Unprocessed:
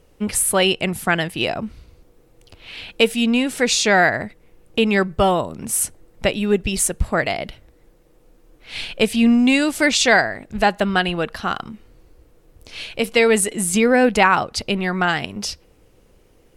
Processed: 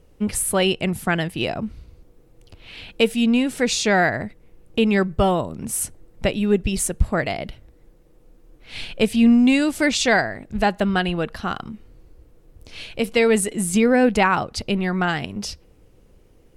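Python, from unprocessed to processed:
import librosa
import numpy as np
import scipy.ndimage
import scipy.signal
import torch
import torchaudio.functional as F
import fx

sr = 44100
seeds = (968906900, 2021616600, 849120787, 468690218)

y = fx.low_shelf(x, sr, hz=370.0, db=7.0)
y = y * librosa.db_to_amplitude(-4.5)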